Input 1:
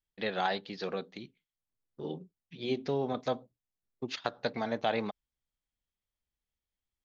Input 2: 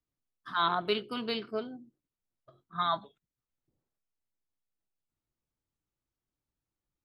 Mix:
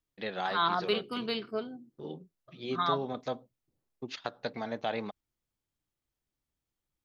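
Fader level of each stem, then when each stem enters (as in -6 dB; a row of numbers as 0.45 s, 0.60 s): -3.0 dB, 0.0 dB; 0.00 s, 0.00 s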